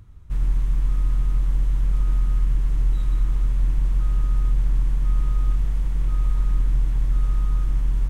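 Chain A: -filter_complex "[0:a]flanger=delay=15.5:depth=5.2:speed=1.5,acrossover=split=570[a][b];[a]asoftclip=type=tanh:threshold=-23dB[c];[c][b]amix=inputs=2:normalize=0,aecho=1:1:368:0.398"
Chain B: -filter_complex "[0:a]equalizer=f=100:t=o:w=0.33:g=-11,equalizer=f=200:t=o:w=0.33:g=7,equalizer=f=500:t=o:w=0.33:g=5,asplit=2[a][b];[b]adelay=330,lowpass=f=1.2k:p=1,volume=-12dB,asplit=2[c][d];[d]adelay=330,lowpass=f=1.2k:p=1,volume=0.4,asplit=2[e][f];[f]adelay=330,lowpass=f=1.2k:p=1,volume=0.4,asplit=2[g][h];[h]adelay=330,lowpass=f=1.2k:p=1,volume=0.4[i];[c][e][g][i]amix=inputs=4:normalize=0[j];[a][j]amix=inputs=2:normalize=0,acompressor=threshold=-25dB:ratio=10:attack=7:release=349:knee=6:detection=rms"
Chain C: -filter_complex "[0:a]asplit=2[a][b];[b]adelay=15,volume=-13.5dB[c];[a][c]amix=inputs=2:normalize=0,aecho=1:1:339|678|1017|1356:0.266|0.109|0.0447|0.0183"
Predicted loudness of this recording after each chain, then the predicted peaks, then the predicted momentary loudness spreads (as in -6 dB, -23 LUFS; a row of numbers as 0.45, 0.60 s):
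-30.0, -34.0, -26.0 LUFS; -19.5, -22.0, -11.5 dBFS; 4, 1, 2 LU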